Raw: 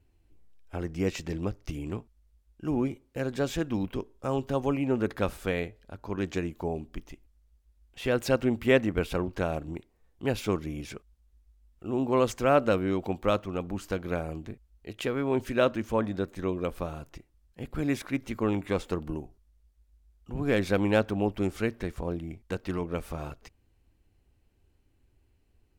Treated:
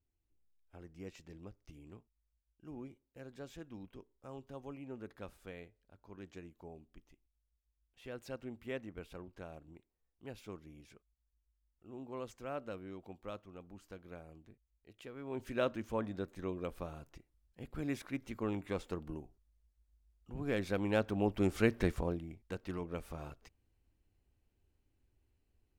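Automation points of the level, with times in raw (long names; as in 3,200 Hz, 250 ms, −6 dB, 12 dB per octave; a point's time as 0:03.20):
0:15.12 −19.5 dB
0:15.53 −9.5 dB
0:20.82 −9.5 dB
0:21.88 +2 dB
0:22.28 −9 dB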